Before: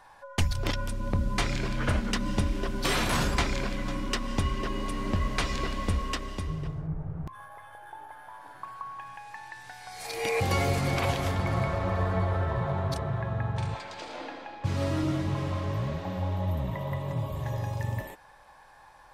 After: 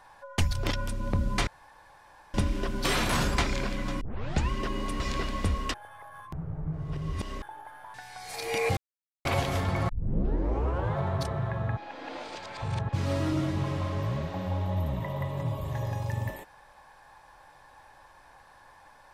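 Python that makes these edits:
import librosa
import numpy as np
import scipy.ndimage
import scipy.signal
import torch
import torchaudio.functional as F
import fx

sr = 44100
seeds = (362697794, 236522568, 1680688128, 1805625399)

y = fx.edit(x, sr, fx.room_tone_fill(start_s=1.47, length_s=0.87),
    fx.tape_start(start_s=4.01, length_s=0.49),
    fx.cut(start_s=5.0, length_s=0.44),
    fx.reverse_span(start_s=6.18, length_s=1.68),
    fx.cut(start_s=8.38, length_s=1.27),
    fx.silence(start_s=10.48, length_s=0.48),
    fx.tape_start(start_s=11.6, length_s=1.08),
    fx.reverse_span(start_s=13.48, length_s=1.12), tone=tone)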